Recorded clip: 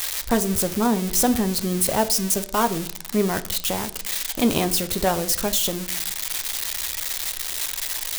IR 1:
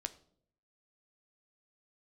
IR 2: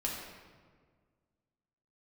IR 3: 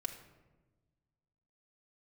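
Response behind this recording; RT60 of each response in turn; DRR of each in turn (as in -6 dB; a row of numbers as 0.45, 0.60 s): 1; 0.65, 1.7, 1.2 s; 9.0, -3.5, 0.5 dB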